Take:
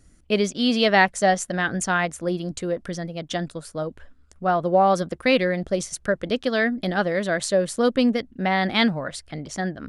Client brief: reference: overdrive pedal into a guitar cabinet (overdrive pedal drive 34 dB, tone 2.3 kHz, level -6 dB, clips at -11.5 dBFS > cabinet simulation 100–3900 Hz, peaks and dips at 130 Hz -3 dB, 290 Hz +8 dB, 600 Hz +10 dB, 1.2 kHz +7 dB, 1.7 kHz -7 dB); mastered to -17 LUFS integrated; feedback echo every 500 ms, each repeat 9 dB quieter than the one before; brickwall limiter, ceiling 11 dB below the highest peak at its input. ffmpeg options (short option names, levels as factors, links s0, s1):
-filter_complex "[0:a]alimiter=limit=0.178:level=0:latency=1,aecho=1:1:500|1000|1500|2000:0.355|0.124|0.0435|0.0152,asplit=2[s0][s1];[s1]highpass=f=720:p=1,volume=50.1,asoftclip=type=tanh:threshold=0.266[s2];[s0][s2]amix=inputs=2:normalize=0,lowpass=f=2300:p=1,volume=0.501,highpass=100,equalizer=f=130:t=q:w=4:g=-3,equalizer=f=290:t=q:w=4:g=8,equalizer=f=600:t=q:w=4:g=10,equalizer=f=1200:t=q:w=4:g=7,equalizer=f=1700:t=q:w=4:g=-7,lowpass=f=3900:w=0.5412,lowpass=f=3900:w=1.3066,volume=0.794"